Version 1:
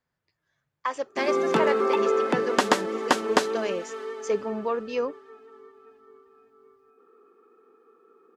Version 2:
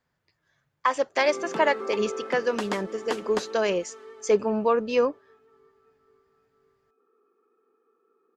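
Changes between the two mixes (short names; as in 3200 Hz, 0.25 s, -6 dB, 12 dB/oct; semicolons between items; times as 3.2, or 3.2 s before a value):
speech +5.5 dB; background -10.5 dB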